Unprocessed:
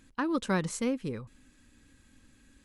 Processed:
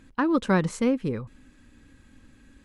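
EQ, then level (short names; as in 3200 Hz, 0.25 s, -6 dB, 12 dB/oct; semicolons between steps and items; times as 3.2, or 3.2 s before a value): high shelf 3600 Hz -10.5 dB; +7.0 dB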